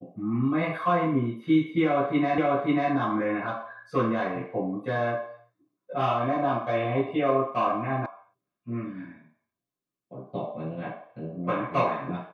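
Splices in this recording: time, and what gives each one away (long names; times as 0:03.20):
0:02.38: the same again, the last 0.54 s
0:08.06: cut off before it has died away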